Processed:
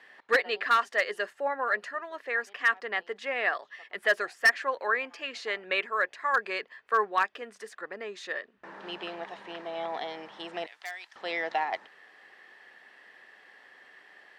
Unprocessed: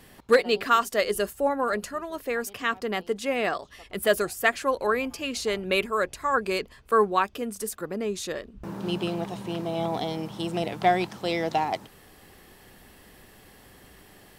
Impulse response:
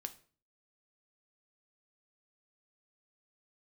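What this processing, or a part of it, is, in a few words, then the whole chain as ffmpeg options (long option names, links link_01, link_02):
megaphone: -filter_complex "[0:a]highpass=580,lowpass=3600,equalizer=frequency=1800:width_type=o:width=0.38:gain=11,asoftclip=type=hard:threshold=-12.5dB,asettb=1/sr,asplit=3[link_01][link_02][link_03];[link_01]atrim=end=10.664[link_04];[link_02]atrim=start=10.66:end=11.16,asetpts=PTS-STARTPTS,afade=type=in:duration=0.004:curve=qsin,afade=type=out:start_time=0.496:duration=0.004:curve=qsin,aderivative[link_05];[link_03]atrim=start=11.156[link_06];[link_04][link_05]acrossfade=duration=0.004:curve1=hsin:curve2=qsin[link_07];[link_07][link_06]acrossfade=duration=0.004:curve1=qsin:curve2=hsin,volume=-3dB"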